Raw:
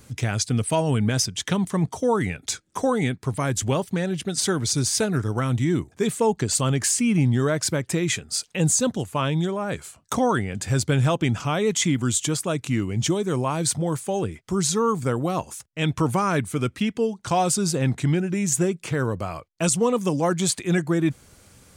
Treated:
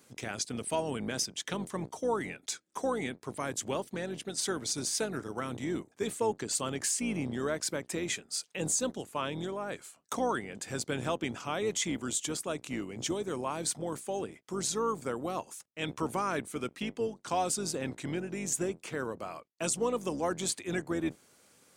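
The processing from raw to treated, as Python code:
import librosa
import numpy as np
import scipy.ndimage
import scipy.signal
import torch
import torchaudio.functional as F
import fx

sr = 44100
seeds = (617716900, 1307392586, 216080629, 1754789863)

y = fx.octave_divider(x, sr, octaves=2, level_db=2.0)
y = scipy.signal.sosfilt(scipy.signal.butter(2, 270.0, 'highpass', fs=sr, output='sos'), y)
y = y * librosa.db_to_amplitude(-8.5)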